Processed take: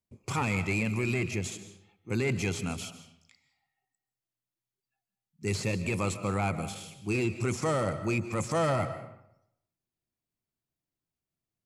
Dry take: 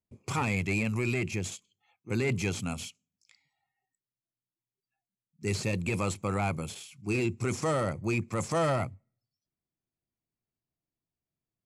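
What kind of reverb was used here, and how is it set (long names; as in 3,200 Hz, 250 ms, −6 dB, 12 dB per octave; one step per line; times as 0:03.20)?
comb and all-pass reverb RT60 0.79 s, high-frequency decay 0.7×, pre-delay 105 ms, DRR 11 dB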